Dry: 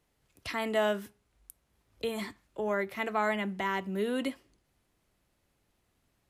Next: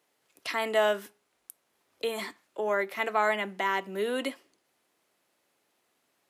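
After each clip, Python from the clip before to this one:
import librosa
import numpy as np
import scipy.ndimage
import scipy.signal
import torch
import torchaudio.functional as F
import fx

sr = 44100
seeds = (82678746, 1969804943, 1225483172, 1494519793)

y = scipy.signal.sosfilt(scipy.signal.butter(2, 360.0, 'highpass', fs=sr, output='sos'), x)
y = y * 10.0 ** (4.0 / 20.0)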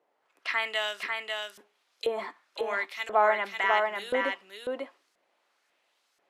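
y = fx.filter_lfo_bandpass(x, sr, shape='saw_up', hz=0.97, low_hz=550.0, high_hz=5800.0, q=1.2)
y = y + 10.0 ** (-4.0 / 20.0) * np.pad(y, (int(545 * sr / 1000.0), 0))[:len(y)]
y = y * 10.0 ** (5.5 / 20.0)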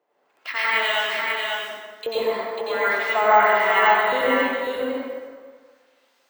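y = fx.rev_plate(x, sr, seeds[0], rt60_s=1.6, hf_ratio=0.65, predelay_ms=80, drr_db=-8.5)
y = np.repeat(scipy.signal.resample_poly(y, 1, 2), 2)[:len(y)]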